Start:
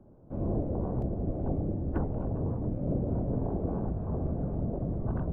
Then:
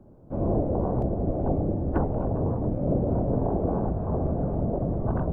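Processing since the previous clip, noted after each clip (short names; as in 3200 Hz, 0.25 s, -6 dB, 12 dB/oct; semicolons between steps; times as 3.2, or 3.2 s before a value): dynamic EQ 750 Hz, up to +6 dB, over -50 dBFS, Q 0.73; gain +4 dB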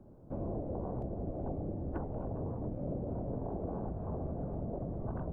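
compressor 3:1, threshold -33 dBFS, peak gain reduction 10.5 dB; gain -4 dB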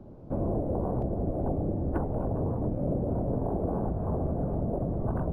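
decimation joined by straight lines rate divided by 4×; gain +8.5 dB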